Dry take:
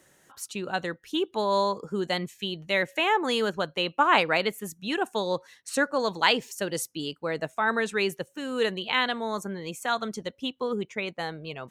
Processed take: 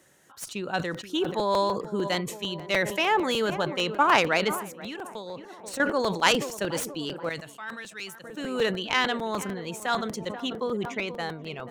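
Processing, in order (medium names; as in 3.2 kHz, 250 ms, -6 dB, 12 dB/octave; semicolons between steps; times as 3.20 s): tracing distortion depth 0.054 ms; high-pass 47 Hz; tape echo 483 ms, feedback 73%, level -14.5 dB, low-pass 1.1 kHz; 4.51–5.80 s: compression 12:1, threshold -34 dBFS, peak gain reduction 14 dB; 7.29–8.24 s: amplifier tone stack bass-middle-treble 5-5-5; crackling interface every 0.15 s, samples 256, repeat, from 0.79 s; decay stretcher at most 83 dB/s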